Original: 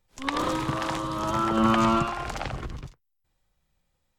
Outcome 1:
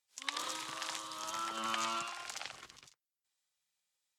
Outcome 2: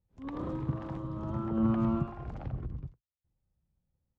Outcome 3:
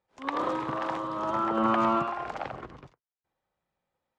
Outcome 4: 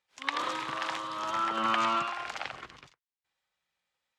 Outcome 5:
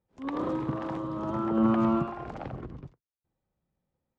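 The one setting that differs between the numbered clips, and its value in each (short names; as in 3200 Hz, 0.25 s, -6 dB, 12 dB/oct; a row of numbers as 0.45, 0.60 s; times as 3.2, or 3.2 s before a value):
band-pass, frequency: 7300, 100, 710, 2400, 270 Hz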